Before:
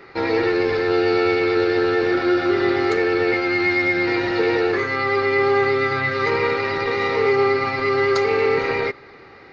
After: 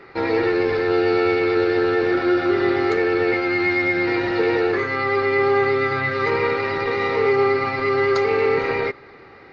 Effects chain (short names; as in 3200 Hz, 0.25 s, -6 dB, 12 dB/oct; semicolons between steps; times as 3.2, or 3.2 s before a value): high shelf 5500 Hz -9.5 dB